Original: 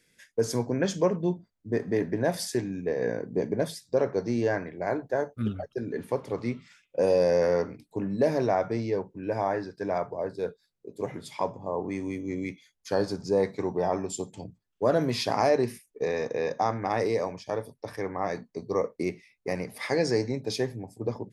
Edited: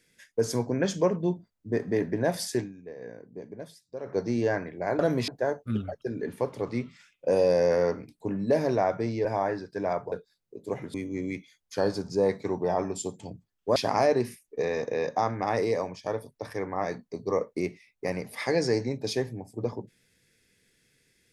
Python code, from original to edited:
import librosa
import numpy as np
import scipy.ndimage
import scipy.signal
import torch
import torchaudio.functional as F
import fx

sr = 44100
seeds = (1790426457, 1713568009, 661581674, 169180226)

y = fx.edit(x, sr, fx.fade_down_up(start_s=2.61, length_s=1.54, db=-13.5, fade_s=0.15, curve='qua'),
    fx.cut(start_s=8.96, length_s=0.34),
    fx.cut(start_s=10.17, length_s=0.27),
    fx.cut(start_s=11.26, length_s=0.82),
    fx.move(start_s=14.9, length_s=0.29, to_s=4.99), tone=tone)